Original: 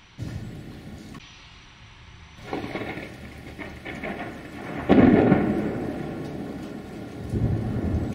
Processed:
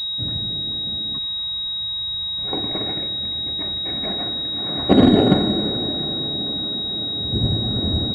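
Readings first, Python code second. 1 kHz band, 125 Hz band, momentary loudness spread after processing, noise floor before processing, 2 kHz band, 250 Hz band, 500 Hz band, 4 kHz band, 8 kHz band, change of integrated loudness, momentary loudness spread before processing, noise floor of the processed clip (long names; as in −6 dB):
+2.0 dB, +3.0 dB, 7 LU, −48 dBFS, −3.5 dB, +3.0 dB, +2.5 dB, +27.5 dB, can't be measured, +5.0 dB, 23 LU, −26 dBFS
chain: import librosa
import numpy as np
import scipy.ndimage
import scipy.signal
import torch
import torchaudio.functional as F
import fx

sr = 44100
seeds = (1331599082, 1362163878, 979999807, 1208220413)

y = fx.air_absorb(x, sr, metres=130.0)
y = fx.pwm(y, sr, carrier_hz=3800.0)
y = y * 10.0 ** (3.0 / 20.0)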